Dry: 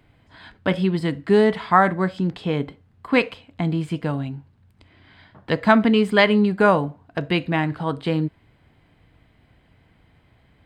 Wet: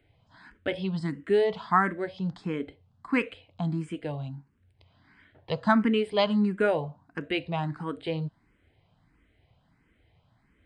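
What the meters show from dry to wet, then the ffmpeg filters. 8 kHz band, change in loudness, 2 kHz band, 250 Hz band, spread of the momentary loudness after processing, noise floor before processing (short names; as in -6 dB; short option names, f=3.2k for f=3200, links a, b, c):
n/a, -7.5 dB, -9.0 dB, -8.0 dB, 13 LU, -59 dBFS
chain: -filter_complex "[0:a]aresample=22050,aresample=44100,asplit=2[a][b];[b]afreqshift=1.5[c];[a][c]amix=inputs=2:normalize=1,volume=-5.5dB"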